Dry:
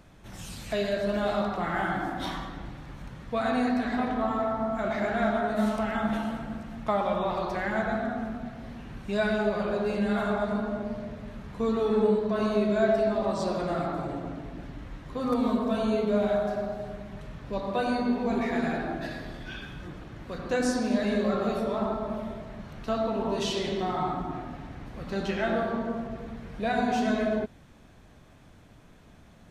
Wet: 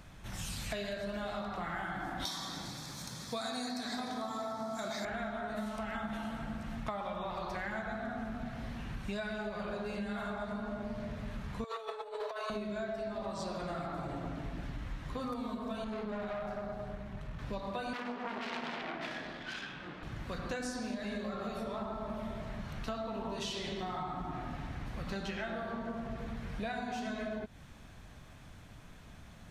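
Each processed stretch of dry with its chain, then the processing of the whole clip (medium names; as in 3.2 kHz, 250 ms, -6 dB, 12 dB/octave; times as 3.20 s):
2.25–5.05 s: high-pass 160 Hz + resonant high shelf 3.3 kHz +13 dB, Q 1.5 + band-stop 2.9 kHz, Q 5.9
11.64–12.50 s: steep high-pass 450 Hz 48 dB/octave + compressor with a negative ratio -34 dBFS, ratio -0.5
15.84–17.39 s: treble shelf 2.7 kHz -7.5 dB + valve stage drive 26 dB, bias 0.6
17.93–20.03 s: self-modulated delay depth 0.85 ms + three-band isolator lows -22 dB, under 190 Hz, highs -18 dB, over 4.5 kHz
whole clip: peaking EQ 380 Hz -7 dB 2 oct; compression 10:1, threshold -38 dBFS; trim +3 dB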